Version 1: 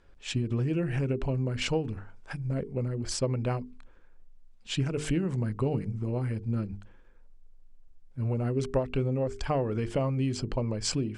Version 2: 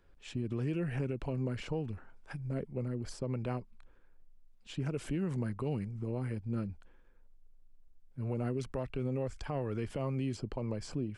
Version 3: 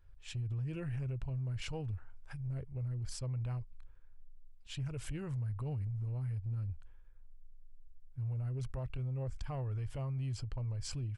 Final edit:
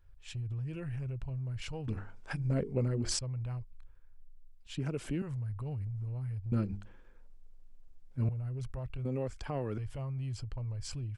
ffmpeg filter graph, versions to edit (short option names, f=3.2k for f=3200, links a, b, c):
-filter_complex "[0:a]asplit=2[a][b];[1:a]asplit=2[c][d];[2:a]asplit=5[e][f][g][h][i];[e]atrim=end=1.882[j];[a]atrim=start=1.878:end=3.192[k];[f]atrim=start=3.188:end=4.772[l];[c]atrim=start=4.768:end=5.222[m];[g]atrim=start=5.218:end=6.522[n];[b]atrim=start=6.518:end=8.292[o];[h]atrim=start=8.288:end=9.052[p];[d]atrim=start=9.048:end=9.782[q];[i]atrim=start=9.778[r];[j][k]acrossfade=d=0.004:c1=hsin:c2=hsin[s];[s][l]acrossfade=d=0.004:c1=hsin:c2=hsin[t];[t][m]acrossfade=d=0.004:c1=hsin:c2=hsin[u];[u][n]acrossfade=d=0.004:c1=hsin:c2=hsin[v];[v][o]acrossfade=d=0.004:c1=hsin:c2=hsin[w];[w][p]acrossfade=d=0.004:c1=hsin:c2=hsin[x];[x][q]acrossfade=d=0.004:c1=hsin:c2=hsin[y];[y][r]acrossfade=d=0.004:c1=hsin:c2=hsin"